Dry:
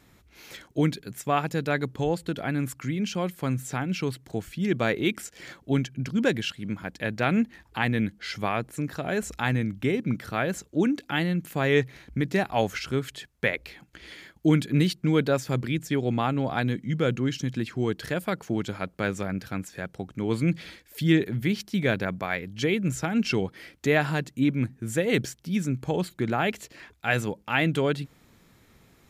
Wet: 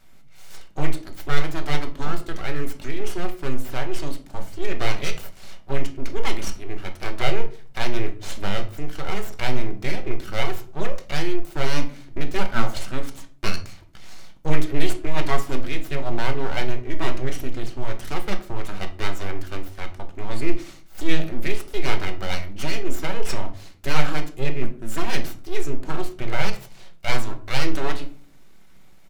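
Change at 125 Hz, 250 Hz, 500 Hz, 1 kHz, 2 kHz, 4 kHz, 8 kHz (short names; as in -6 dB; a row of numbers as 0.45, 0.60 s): -3.0, -6.0, -2.5, +0.5, -1.0, +2.5, +1.5 dB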